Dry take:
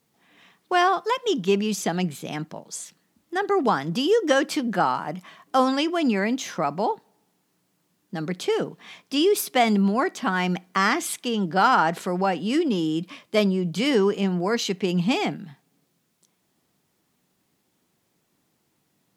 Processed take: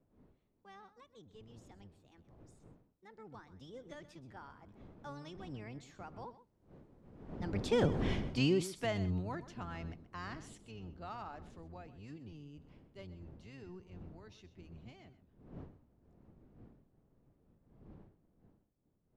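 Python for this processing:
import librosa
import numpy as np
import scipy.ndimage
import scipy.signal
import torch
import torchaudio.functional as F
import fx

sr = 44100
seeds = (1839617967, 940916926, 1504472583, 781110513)

p1 = fx.octave_divider(x, sr, octaves=1, level_db=2.0)
p2 = fx.dmg_wind(p1, sr, seeds[0], corner_hz=270.0, level_db=-28.0)
p3 = fx.doppler_pass(p2, sr, speed_mps=31, closest_m=2.9, pass_at_s=8.01)
p4 = scipy.signal.sosfilt(scipy.signal.butter(2, 8000.0, 'lowpass', fs=sr, output='sos'), p3)
p5 = p4 + fx.echo_single(p4, sr, ms=128, db=-15.0, dry=0)
y = p5 * librosa.db_to_amplitude(2.0)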